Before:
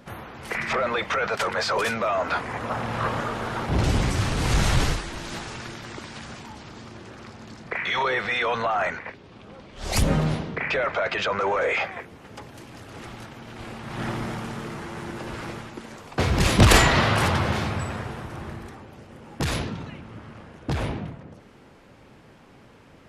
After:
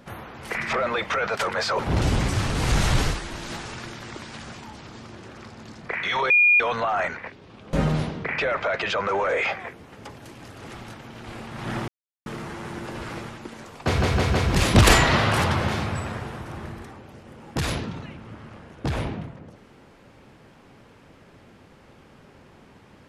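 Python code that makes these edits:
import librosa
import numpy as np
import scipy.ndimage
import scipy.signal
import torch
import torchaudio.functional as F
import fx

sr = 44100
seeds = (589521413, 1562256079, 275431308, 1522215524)

y = fx.edit(x, sr, fx.cut(start_s=1.79, length_s=1.82),
    fx.bleep(start_s=8.12, length_s=0.3, hz=2430.0, db=-13.0),
    fx.cut(start_s=9.55, length_s=0.5),
    fx.silence(start_s=14.2, length_s=0.38),
    fx.stutter(start_s=16.18, slice_s=0.16, count=4), tone=tone)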